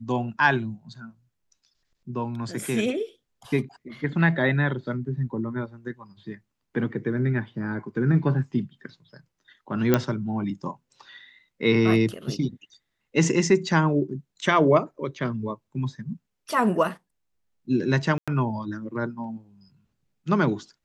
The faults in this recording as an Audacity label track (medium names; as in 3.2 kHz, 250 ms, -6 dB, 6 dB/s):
9.940000	9.940000	pop -6 dBFS
18.180000	18.280000	dropout 96 ms